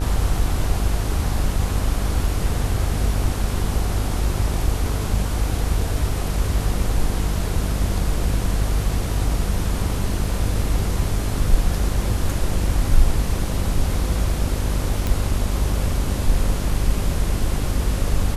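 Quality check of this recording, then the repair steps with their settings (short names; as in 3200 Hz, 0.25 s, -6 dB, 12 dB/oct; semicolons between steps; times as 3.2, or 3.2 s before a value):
buzz 50 Hz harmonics 31 -24 dBFS
15.07 pop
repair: de-click; de-hum 50 Hz, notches 31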